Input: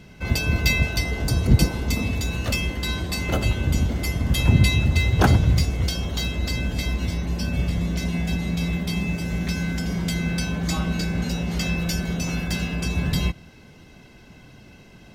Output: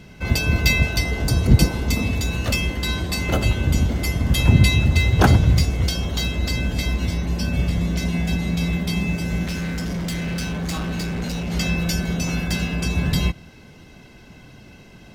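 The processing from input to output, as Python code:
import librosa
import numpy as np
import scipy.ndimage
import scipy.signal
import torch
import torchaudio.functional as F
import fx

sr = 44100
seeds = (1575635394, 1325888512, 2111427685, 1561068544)

y = fx.clip_hard(x, sr, threshold_db=-25.5, at=(9.45, 11.52))
y = y * librosa.db_to_amplitude(2.5)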